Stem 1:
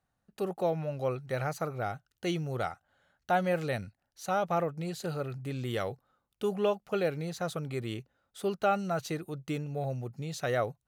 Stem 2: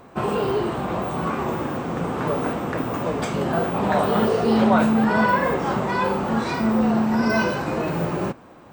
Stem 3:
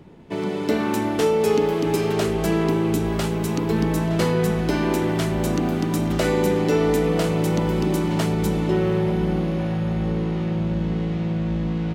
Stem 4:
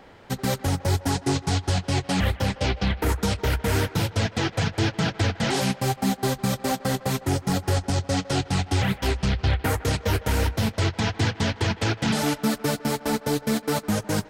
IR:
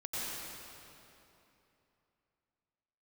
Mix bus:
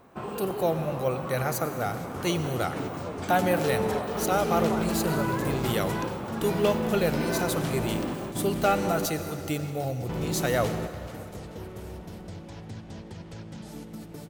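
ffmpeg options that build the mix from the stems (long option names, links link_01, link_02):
-filter_complex "[0:a]aemphasis=mode=production:type=50fm,volume=2.5dB,asplit=3[link_01][link_02][link_03];[link_02]volume=-12dB[link_04];[1:a]acompressor=threshold=-29dB:ratio=1.5,volume=-8.5dB[link_05];[2:a]asoftclip=type=tanh:threshold=-20dB,adelay=2450,volume=-6.5dB,asplit=3[link_06][link_07][link_08];[link_06]atrim=end=9.06,asetpts=PTS-STARTPTS,afade=type=out:start_time=9.056:duration=0.004:curve=hsin[link_09];[link_07]atrim=start=9.06:end=10.09,asetpts=PTS-STARTPTS,volume=0[link_10];[link_08]atrim=start=10.09,asetpts=PTS-STARTPTS,afade=type=in:duration=0.004:curve=hsin[link_11];[link_09][link_10][link_11]concat=n=3:v=0:a=1,asplit=2[link_12][link_13];[link_13]volume=-11dB[link_14];[3:a]acompressor=threshold=-27dB:ratio=6,equalizer=frequency=1900:width=0.4:gain=-7.5,adelay=1500,volume=-12.5dB,asplit=2[link_15][link_16];[link_16]volume=-14.5dB[link_17];[link_03]apad=whole_len=634685[link_18];[link_12][link_18]sidechaingate=range=-33dB:threshold=-52dB:ratio=16:detection=peak[link_19];[4:a]atrim=start_sample=2205[link_20];[link_04][link_17]amix=inputs=2:normalize=0[link_21];[link_21][link_20]afir=irnorm=-1:irlink=0[link_22];[link_14]aecho=0:1:434|868|1302|1736|2170|2604:1|0.42|0.176|0.0741|0.0311|0.0131[link_23];[link_01][link_05][link_19][link_15][link_22][link_23]amix=inputs=6:normalize=0"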